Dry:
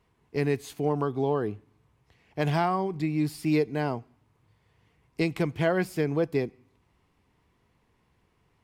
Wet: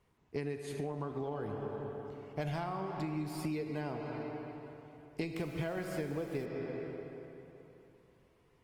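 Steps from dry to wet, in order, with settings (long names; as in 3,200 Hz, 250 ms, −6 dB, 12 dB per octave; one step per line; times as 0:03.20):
0:01.33–0:02.54: comb filter 1.4 ms, depth 34%
comb and all-pass reverb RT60 3.2 s, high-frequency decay 0.75×, pre-delay 0 ms, DRR 5.5 dB
downward compressor 10 to 1, threshold −31 dBFS, peak gain reduction 12.5 dB
0:05.34–0:06.44: background noise pink −57 dBFS
level −2.5 dB
Opus 24 kbit/s 48,000 Hz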